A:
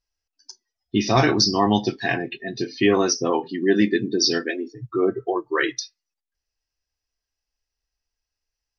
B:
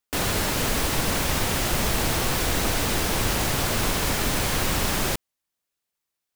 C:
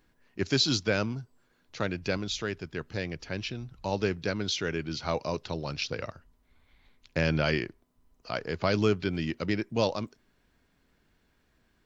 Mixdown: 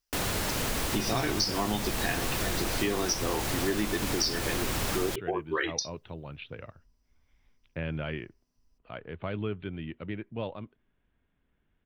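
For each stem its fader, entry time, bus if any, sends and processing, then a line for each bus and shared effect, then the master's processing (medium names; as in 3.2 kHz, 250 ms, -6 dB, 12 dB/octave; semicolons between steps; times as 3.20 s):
-5.0 dB, 0.00 s, no send, treble shelf 4.2 kHz +9 dB
-4.0 dB, 0.00 s, no send, none
-9.0 dB, 0.60 s, no send, steep low-pass 3.6 kHz 72 dB/octave; bass shelf 140 Hz +6.5 dB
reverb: none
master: compression 4:1, threshold -26 dBFS, peak gain reduction 11 dB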